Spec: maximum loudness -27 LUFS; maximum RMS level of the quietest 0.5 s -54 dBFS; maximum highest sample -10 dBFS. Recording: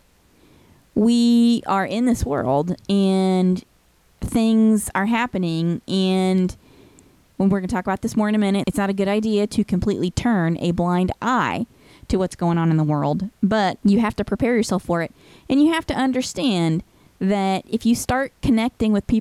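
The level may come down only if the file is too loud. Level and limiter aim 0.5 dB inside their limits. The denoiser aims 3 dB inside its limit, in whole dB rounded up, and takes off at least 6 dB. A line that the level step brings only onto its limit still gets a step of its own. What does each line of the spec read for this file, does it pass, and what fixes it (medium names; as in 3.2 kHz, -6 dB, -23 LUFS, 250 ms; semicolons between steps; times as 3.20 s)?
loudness -20.5 LUFS: fail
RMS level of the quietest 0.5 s -57 dBFS: pass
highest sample -9.0 dBFS: fail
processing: trim -7 dB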